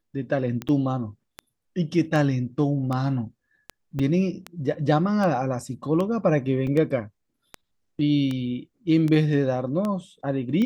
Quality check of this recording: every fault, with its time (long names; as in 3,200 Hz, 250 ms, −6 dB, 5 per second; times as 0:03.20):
scratch tick 78 rpm −16 dBFS
0:00.68–0:00.69: drop-out 7.7 ms
0:03.99: drop-out 4.8 ms
0:06.67: drop-out 3.3 ms